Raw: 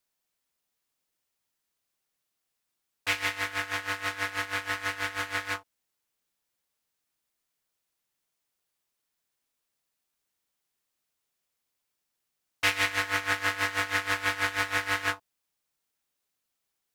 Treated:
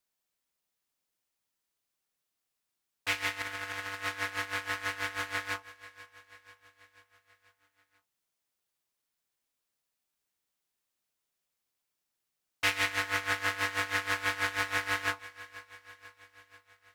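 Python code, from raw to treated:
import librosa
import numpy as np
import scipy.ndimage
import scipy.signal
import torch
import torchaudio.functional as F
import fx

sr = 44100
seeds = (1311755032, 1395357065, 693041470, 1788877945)

p1 = x + fx.echo_feedback(x, sr, ms=488, feedback_pct=59, wet_db=-18, dry=0)
p2 = fx.over_compress(p1, sr, threshold_db=-35.0, ratio=-1.0, at=(3.42, 3.94))
y = F.gain(torch.from_numpy(p2), -3.0).numpy()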